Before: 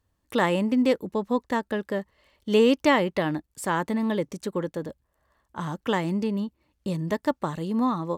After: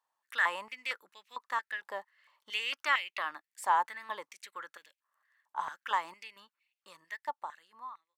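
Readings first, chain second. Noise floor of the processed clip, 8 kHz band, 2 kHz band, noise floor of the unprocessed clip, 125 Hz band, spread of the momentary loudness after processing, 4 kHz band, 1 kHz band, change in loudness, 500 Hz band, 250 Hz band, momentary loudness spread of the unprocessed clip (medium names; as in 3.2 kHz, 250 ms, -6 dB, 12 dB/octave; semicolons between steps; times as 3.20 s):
under -85 dBFS, -8.5 dB, -1.5 dB, -75 dBFS, under -40 dB, 17 LU, -4.5 dB, -3.5 dB, -8.5 dB, -22.5 dB, -37.5 dB, 13 LU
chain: fade out at the end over 2.02 s; step-sequenced high-pass 4.4 Hz 890–2500 Hz; trim -8.5 dB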